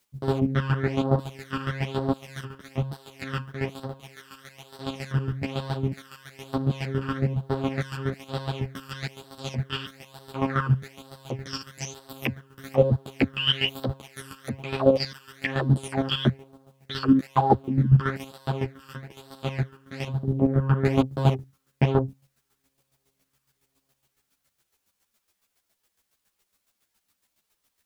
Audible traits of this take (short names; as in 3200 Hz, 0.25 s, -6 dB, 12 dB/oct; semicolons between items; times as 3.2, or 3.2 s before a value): phasing stages 12, 1.1 Hz, lowest notch 670–2300 Hz; a quantiser's noise floor 12-bit, dither triangular; chopped level 7.2 Hz, depth 65%, duty 25%; a shimmering, thickened sound